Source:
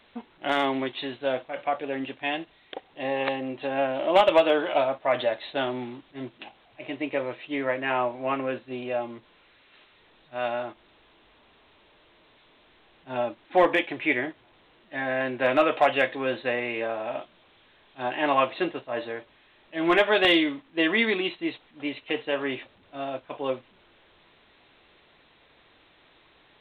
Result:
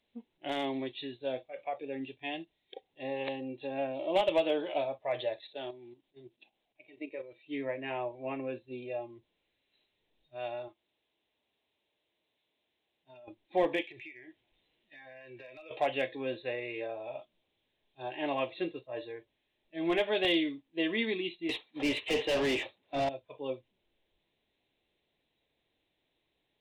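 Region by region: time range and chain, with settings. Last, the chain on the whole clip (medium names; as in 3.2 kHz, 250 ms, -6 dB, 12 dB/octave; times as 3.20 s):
5.41–7.47 s: peaking EQ 78 Hz -9.5 dB 1.6 oct + level held to a coarse grid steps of 10 dB
10.68–13.28 s: high-pass 64 Hz + bass shelf 400 Hz -8 dB + compression 10:1, threshold -37 dBFS
13.82–15.71 s: peaking EQ 2.6 kHz +6.5 dB 1.8 oct + compression 16:1, threshold -34 dBFS
21.49–23.09 s: expander -52 dBFS + overdrive pedal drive 29 dB, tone 2.1 kHz, clips at -12 dBFS
whole clip: spectral noise reduction 12 dB; peaking EQ 1.3 kHz -14 dB 0.94 oct; trim -6 dB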